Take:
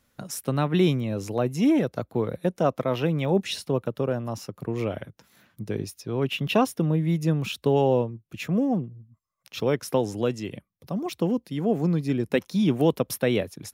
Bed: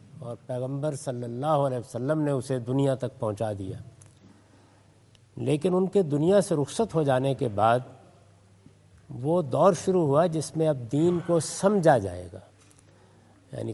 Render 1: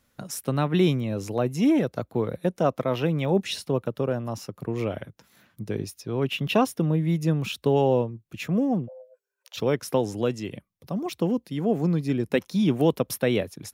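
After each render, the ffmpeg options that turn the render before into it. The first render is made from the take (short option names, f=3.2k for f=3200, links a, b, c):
-filter_complex "[0:a]asplit=3[a][b][c];[a]afade=t=out:st=8.87:d=0.02[d];[b]afreqshift=400,afade=t=in:st=8.87:d=0.02,afade=t=out:st=9.56:d=0.02[e];[c]afade=t=in:st=9.56:d=0.02[f];[d][e][f]amix=inputs=3:normalize=0"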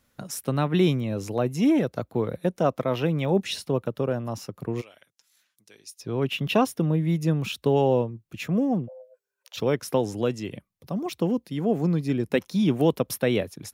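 -filter_complex "[0:a]asplit=3[a][b][c];[a]afade=t=out:st=4.8:d=0.02[d];[b]bandpass=f=7.3k:t=q:w=0.92,afade=t=in:st=4.8:d=0.02,afade=t=out:st=5.99:d=0.02[e];[c]afade=t=in:st=5.99:d=0.02[f];[d][e][f]amix=inputs=3:normalize=0"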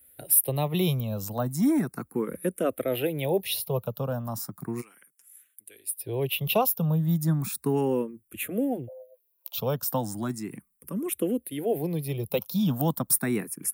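-filter_complex "[0:a]acrossover=split=400|1100[a][b][c];[c]aexciter=amount=9.2:drive=6.3:freq=8.7k[d];[a][b][d]amix=inputs=3:normalize=0,asplit=2[e][f];[f]afreqshift=0.35[g];[e][g]amix=inputs=2:normalize=1"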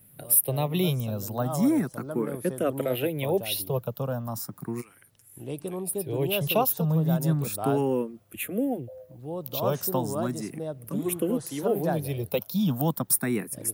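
-filter_complex "[1:a]volume=-10dB[a];[0:a][a]amix=inputs=2:normalize=0"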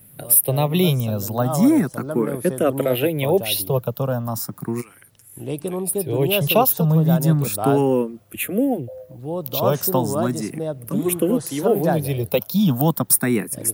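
-af "volume=7.5dB,alimiter=limit=-2dB:level=0:latency=1"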